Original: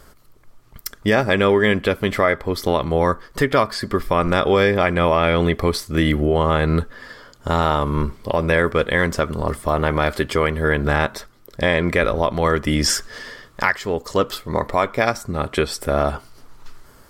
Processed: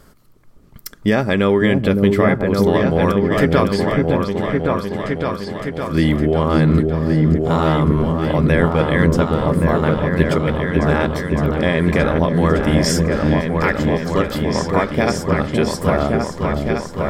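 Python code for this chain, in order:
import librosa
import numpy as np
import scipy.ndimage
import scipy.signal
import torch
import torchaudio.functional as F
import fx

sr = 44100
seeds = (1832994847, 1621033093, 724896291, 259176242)

p1 = fx.peak_eq(x, sr, hz=190.0, db=7.5, octaves=1.7)
p2 = fx.gate_flip(p1, sr, shuts_db=-11.0, range_db=-37, at=(3.92, 5.93))
p3 = fx.step_gate(p2, sr, bpm=159, pattern='....xx.x', floor_db=-12.0, edge_ms=4.5, at=(9.92, 10.74), fade=0.02)
p4 = p3 + fx.echo_opening(p3, sr, ms=561, hz=400, octaves=2, feedback_pct=70, wet_db=0, dry=0)
y = F.gain(torch.from_numpy(p4), -2.5).numpy()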